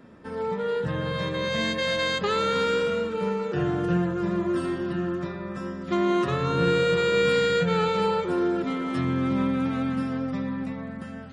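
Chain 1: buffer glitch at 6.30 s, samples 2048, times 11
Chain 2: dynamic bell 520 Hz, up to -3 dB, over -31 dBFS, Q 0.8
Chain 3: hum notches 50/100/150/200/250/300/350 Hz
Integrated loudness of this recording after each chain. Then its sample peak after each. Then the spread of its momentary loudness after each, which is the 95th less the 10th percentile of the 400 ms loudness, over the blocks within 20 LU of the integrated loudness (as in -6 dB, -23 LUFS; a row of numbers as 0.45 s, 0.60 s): -26.0 LUFS, -27.0 LUFS, -26.5 LUFS; -12.0 dBFS, -13.0 dBFS, -11.5 dBFS; 9 LU, 9 LU, 11 LU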